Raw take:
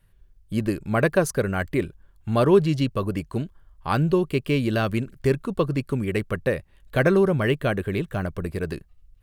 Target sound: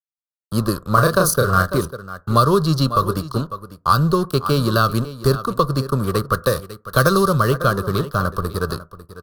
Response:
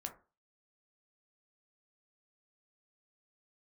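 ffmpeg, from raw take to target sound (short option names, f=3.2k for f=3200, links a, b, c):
-filter_complex "[0:a]aeval=exprs='sgn(val(0))*max(abs(val(0))-0.0119,0)':c=same,firequalizer=gain_entry='entry(120,0);entry(290,-6);entry(520,1);entry(810,-7);entry(1200,15);entry(2100,-20);entry(4200,9);entry(7400,-1);entry(11000,9)':delay=0.05:min_phase=1,aecho=1:1:548:0.158,asplit=2[a][b];[1:a]atrim=start_sample=2205,afade=t=out:st=0.19:d=0.01,atrim=end_sample=8820[c];[b][c]afir=irnorm=-1:irlink=0,volume=-9dB[d];[a][d]amix=inputs=2:normalize=0,acrossover=split=160|3000[e][f][g];[f]acompressor=threshold=-21dB:ratio=3[h];[e][h][g]amix=inputs=3:normalize=0,asettb=1/sr,asplit=3[i][j][k];[i]atrim=end=0.944[l];[j]atrim=start=0.94:end=1.78,asetpts=PTS-STARTPTS,afade=t=in:d=0.004:c=qsin,afade=t=out:st=0.836:d=0.004:c=qsin,asplit=2[m][n];[n]adelay=33,volume=-3.5dB[o];[m][o]amix=inputs=2:normalize=0,atrim=end_sample=37044[p];[k]atrim=start=1.776[q];[l][p]acrossfade=d=0.004:c1=hsin:c2=qsin[r];[r][q]acrossfade=d=0.004:c1=qsin:c2=hsin,asettb=1/sr,asplit=3[s][t][u];[s]atrim=end=6.274[v];[t]atrim=start=6.27:end=7.4,asetpts=PTS-STARTPTS,afade=t=in:d=0.004:c=qsin,afade=t=out:st=1.126:d=0.004:c=qsin,adynamicequalizer=threshold=0.0141:dfrequency=2200:dqfactor=0.7:tfrequency=2200:tqfactor=0.7:attack=5:release=100:ratio=0.375:range=3:mode=boostabove:tftype=highshelf[w];[u]atrim=start=7.396[x];[v][w]acrossfade=d=0.004:c1=hsin:c2=qsin[y];[y][x]acrossfade=d=0.004:c1=qsin:c2=hsin,volume=6.5dB"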